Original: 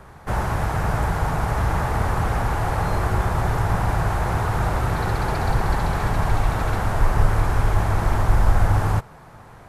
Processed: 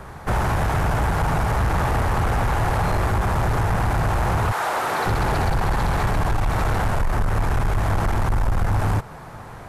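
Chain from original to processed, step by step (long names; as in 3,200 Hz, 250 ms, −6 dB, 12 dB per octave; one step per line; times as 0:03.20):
0:04.51–0:05.05: high-pass filter 740 Hz → 350 Hz 12 dB per octave
downward compressor 2 to 1, threshold −20 dBFS, peak gain reduction 6 dB
soft clipping −22 dBFS, distortion −11 dB
level +6.5 dB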